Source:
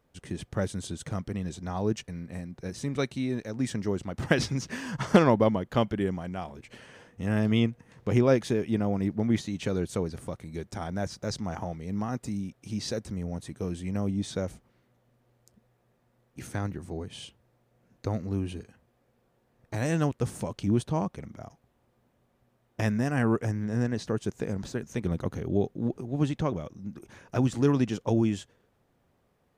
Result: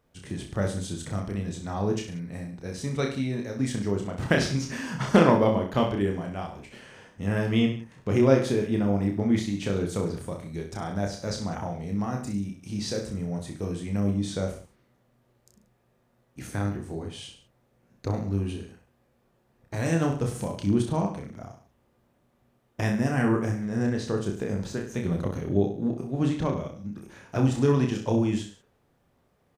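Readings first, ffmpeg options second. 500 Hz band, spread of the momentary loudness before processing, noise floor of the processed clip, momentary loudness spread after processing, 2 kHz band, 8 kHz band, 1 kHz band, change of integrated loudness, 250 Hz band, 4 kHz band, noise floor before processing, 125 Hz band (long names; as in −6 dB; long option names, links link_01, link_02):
+2.5 dB, 14 LU, −68 dBFS, 14 LU, +2.5 dB, +2.0 dB, +2.5 dB, +2.0 dB, +2.0 dB, +2.0 dB, −70 dBFS, +2.0 dB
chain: -af "aecho=1:1:30|63|99.3|139.2|183.2:0.631|0.398|0.251|0.158|0.1"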